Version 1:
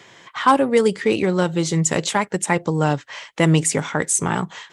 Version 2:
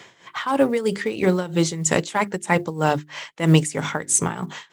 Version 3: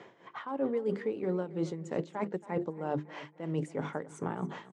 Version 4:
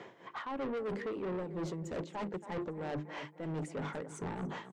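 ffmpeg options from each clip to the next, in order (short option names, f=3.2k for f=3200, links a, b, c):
-af "bandreject=f=50:t=h:w=6,bandreject=f=100:t=h:w=6,bandreject=f=150:t=h:w=6,bandreject=f=200:t=h:w=6,bandreject=f=250:t=h:w=6,bandreject=f=300:t=h:w=6,bandreject=f=350:t=h:w=6,bandreject=f=400:t=h:w=6,acrusher=bits=9:mode=log:mix=0:aa=0.000001,tremolo=f=3.1:d=0.8,volume=2.5dB"
-af "areverse,acompressor=threshold=-27dB:ratio=10,areverse,bandpass=f=390:t=q:w=0.7:csg=0,aecho=1:1:275|550|825:0.141|0.0523|0.0193"
-af "asoftclip=type=tanh:threshold=-36.5dB,volume=2.5dB"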